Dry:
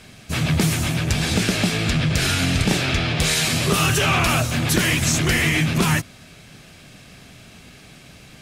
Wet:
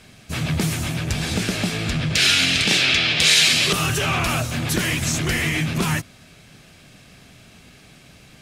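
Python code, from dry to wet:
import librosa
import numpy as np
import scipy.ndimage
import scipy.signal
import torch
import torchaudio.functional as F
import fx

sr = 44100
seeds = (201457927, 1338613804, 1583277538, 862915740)

y = fx.weighting(x, sr, curve='D', at=(2.15, 3.73))
y = y * 10.0 ** (-3.0 / 20.0)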